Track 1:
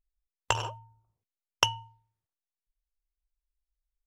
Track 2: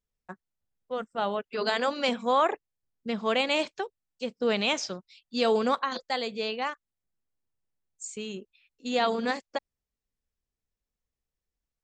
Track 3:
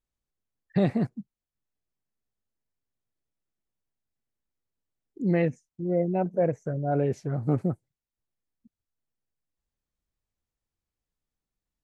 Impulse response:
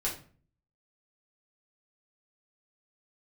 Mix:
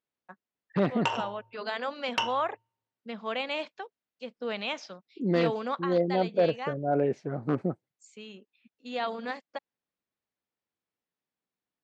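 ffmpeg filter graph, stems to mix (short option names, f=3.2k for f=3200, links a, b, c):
-filter_complex "[0:a]adelay=550,volume=-3dB,asplit=2[a][b];[b]volume=-6.5dB[c];[1:a]equalizer=f=370:t=o:w=0.5:g=-7,volume=-5dB[d];[2:a]volume=1dB[e];[3:a]atrim=start_sample=2205[f];[c][f]afir=irnorm=-1:irlink=0[g];[a][d][e][g]amix=inputs=4:normalize=0,aeval=exprs='0.188*(abs(mod(val(0)/0.188+3,4)-2)-1)':c=same,highpass=220,lowpass=3.7k"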